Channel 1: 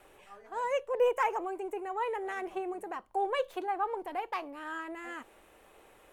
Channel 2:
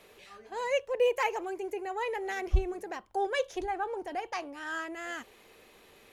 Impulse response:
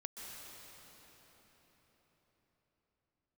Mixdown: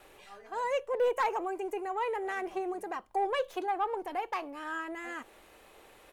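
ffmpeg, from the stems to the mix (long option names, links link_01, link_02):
-filter_complex "[0:a]asoftclip=type=tanh:threshold=-22.5dB,volume=1.5dB[link_01];[1:a]highpass=1300,acompressor=threshold=-45dB:ratio=6,volume=-1,adelay=2.2,volume=-4dB[link_02];[link_01][link_02]amix=inputs=2:normalize=0"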